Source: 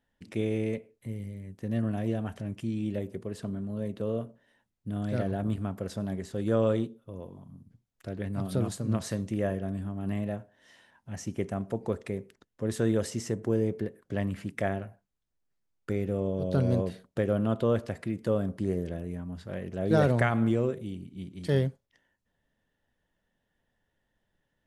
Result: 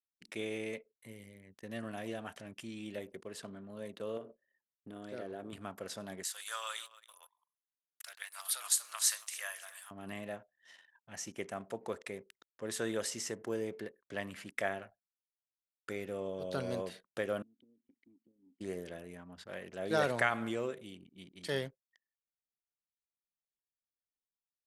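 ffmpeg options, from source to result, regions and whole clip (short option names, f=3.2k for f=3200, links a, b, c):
-filter_complex "[0:a]asettb=1/sr,asplit=3[a][b][c];[a]atrim=end=4.174[d];[b]atrim=start=4.17:end=5.53,asetpts=PTS-STARTPTS,afade=t=in:d=0.004:c=qsin,afade=t=out:st=1.356:d=0.004:c=qsin,equalizer=f=380:t=o:w=1.1:g=11.5,acompressor=threshold=-32dB:ratio=3:attack=3.2:release=140:knee=1:detection=peak[e];[c]atrim=start=5.526[f];[d][e]acrossfade=d=0.004:c1=hsin:c2=qsin[g];[g][f]acrossfade=d=0.004:c1=qsin:c2=hsin,asettb=1/sr,asplit=3[h][i][j];[h]atrim=end=6.234[k];[i]atrim=start=6.23:end=9.91,asetpts=PTS-STARTPTS,afade=t=in:d=0.004:c=qsin,afade=t=out:st=3.676:d=0.004:c=qsin,highpass=f=970:w=0.5412,highpass=f=970:w=1.3066,aemphasis=mode=production:type=75kf,aecho=1:1:277|554:0.126|0.0327,atrim=end_sample=162288[l];[j]atrim=start=9.906[m];[k][l]acrossfade=d=0.004:c1=hsin:c2=qsin[n];[n][m]acrossfade=d=0.004:c1=qsin:c2=hsin,asettb=1/sr,asplit=3[o][p][q];[o]atrim=end=17.424[r];[p]atrim=start=17.42:end=18.61,asetpts=PTS-STARTPTS,afade=t=in:d=0.004:c=qsin,afade=t=out:st=1.186:d=0.004:c=qsin,equalizer=f=1.5k:w=0.58:g=-11.5,acompressor=threshold=-33dB:ratio=16:attack=3.2:release=140:knee=1:detection=peak,asplit=3[s][t][u];[s]bandpass=f=270:t=q:w=8,volume=0dB[v];[t]bandpass=f=2.29k:t=q:w=8,volume=-6dB[w];[u]bandpass=f=3.01k:t=q:w=8,volume=-9dB[x];[v][w][x]amix=inputs=3:normalize=0[y];[q]atrim=start=18.606[z];[r][y]acrossfade=d=0.004:c1=hsin:c2=qsin[aa];[aa][z]acrossfade=d=0.004:c1=qsin:c2=hsin,highpass=f=1.3k:p=1,anlmdn=0.0000398,volume=2dB"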